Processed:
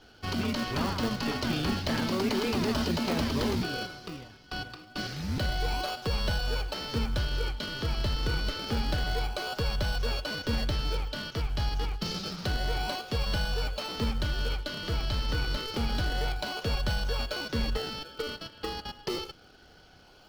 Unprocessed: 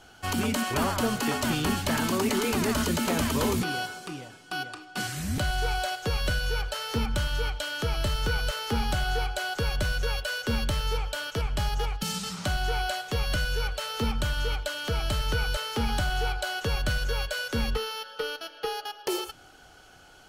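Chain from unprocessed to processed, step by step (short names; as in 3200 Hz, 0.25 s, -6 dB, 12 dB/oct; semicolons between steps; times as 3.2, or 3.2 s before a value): resonant high shelf 6400 Hz -10 dB, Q 3; in parallel at -3.5 dB: decimation with a swept rate 38×, swing 100% 0.28 Hz; on the sum: gain -6 dB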